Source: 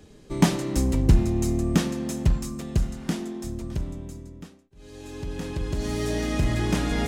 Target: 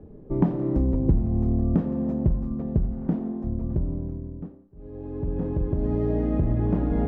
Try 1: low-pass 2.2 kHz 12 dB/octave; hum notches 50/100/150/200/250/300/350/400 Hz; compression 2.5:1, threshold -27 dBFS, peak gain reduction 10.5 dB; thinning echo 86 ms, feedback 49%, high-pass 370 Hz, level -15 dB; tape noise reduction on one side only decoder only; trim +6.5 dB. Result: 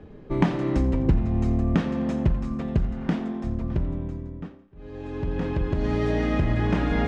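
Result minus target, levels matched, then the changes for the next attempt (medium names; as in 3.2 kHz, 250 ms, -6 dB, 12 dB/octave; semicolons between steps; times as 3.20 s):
2 kHz band +17.0 dB
change: low-pass 620 Hz 12 dB/octave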